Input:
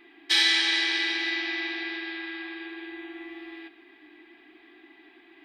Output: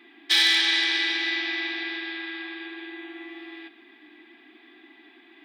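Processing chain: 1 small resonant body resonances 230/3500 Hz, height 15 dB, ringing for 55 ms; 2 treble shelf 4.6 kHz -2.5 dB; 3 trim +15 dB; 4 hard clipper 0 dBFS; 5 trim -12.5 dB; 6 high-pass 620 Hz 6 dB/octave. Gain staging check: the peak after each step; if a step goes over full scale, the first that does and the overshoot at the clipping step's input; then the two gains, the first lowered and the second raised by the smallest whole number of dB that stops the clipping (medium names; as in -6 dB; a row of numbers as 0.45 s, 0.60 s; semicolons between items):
-9.0 dBFS, -9.5 dBFS, +5.5 dBFS, 0.0 dBFS, -12.5 dBFS, -10.5 dBFS; step 3, 5.5 dB; step 3 +9 dB, step 5 -6.5 dB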